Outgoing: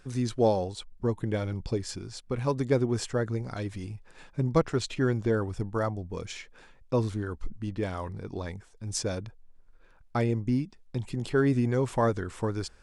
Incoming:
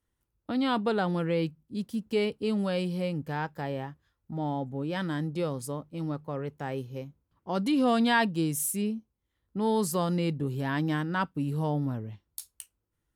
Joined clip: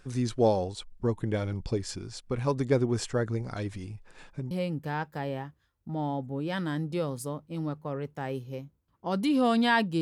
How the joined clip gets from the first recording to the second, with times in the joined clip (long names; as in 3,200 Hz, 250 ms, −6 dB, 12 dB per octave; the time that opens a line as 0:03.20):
outgoing
0:03.76–0:04.51: downward compressor 2.5 to 1, threshold −36 dBFS
0:04.51: continue with incoming from 0:02.94